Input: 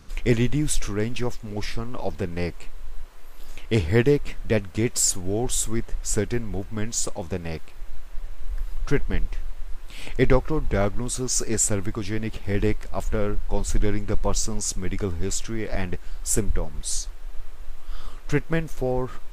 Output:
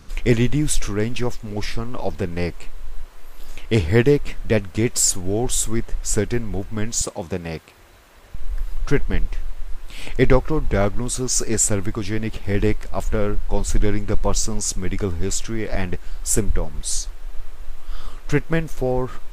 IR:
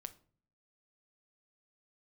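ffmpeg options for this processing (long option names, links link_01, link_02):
-filter_complex "[0:a]asettb=1/sr,asplit=3[link_01][link_02][link_03];[link_01]atrim=end=7.014[link_04];[link_02]atrim=start=7.01:end=8.35,asetpts=PTS-STARTPTS,afade=type=in:duration=0.004:curve=qsin,afade=type=out:start_time=1.336:duration=0.004:curve=qsin,highpass=94[link_05];[link_03]atrim=start=8.346[link_06];[link_04][link_05]acrossfade=duration=0.004:curve1=hsin:curve2=qsin[link_07];[link_07][link_06]acrossfade=duration=0.004:curve1=qsin:curve2=hsin,volume=3.5dB"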